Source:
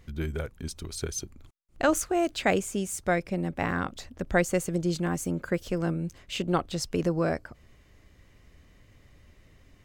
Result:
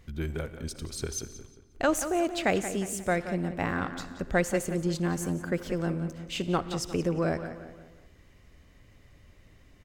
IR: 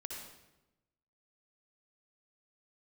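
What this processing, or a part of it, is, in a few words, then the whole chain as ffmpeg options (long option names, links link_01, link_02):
saturated reverb return: -filter_complex "[0:a]asettb=1/sr,asplit=3[link_01][link_02][link_03];[link_01]atrim=end=6.744[link_04];[link_02]atrim=start=6.74:end=7.22,asetpts=PTS-STARTPTS,afade=type=in:duration=0.004:curve=qsin,afade=type=out:start_time=0.476:duration=0.004:curve=qsin,bandreject=frequency=4200:width=6.7[link_05];[link_03]atrim=start=7.216[link_06];[link_04][link_05]acrossfade=duration=0.004:curve1=hsin:curve2=qsin[link_07];[link_07][link_06]acrossfade=duration=0.004:curve1=qsin:curve2=hsin,asplit=2[link_08][link_09];[link_09]adelay=178,lowpass=frequency=4200:poles=1,volume=-11dB,asplit=2[link_10][link_11];[link_11]adelay=178,lowpass=frequency=4200:poles=1,volume=0.42,asplit=2[link_12][link_13];[link_13]adelay=178,lowpass=frequency=4200:poles=1,volume=0.42,asplit=2[link_14][link_15];[link_15]adelay=178,lowpass=frequency=4200:poles=1,volume=0.42[link_16];[link_08][link_10][link_12][link_14][link_16]amix=inputs=5:normalize=0,asplit=2[link_17][link_18];[1:a]atrim=start_sample=2205[link_19];[link_18][link_19]afir=irnorm=-1:irlink=0,asoftclip=type=tanh:threshold=-31dB,volume=-7dB[link_20];[link_17][link_20]amix=inputs=2:normalize=0,volume=-2.5dB"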